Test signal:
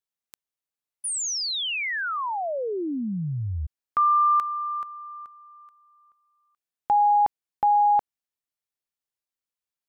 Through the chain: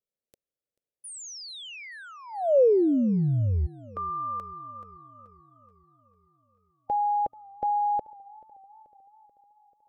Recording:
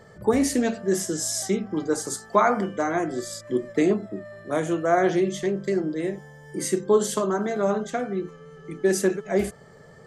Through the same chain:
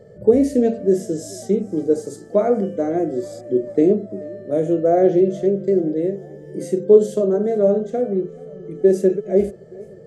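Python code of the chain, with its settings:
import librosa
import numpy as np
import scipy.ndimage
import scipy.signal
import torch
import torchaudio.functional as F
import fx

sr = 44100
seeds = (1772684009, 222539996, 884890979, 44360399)

y = fx.low_shelf_res(x, sr, hz=740.0, db=10.5, q=3.0)
y = fx.hpss(y, sr, part='harmonic', gain_db=6)
y = fx.echo_warbled(y, sr, ms=435, feedback_pct=60, rate_hz=2.8, cents=72, wet_db=-23)
y = F.gain(torch.from_numpy(y), -12.5).numpy()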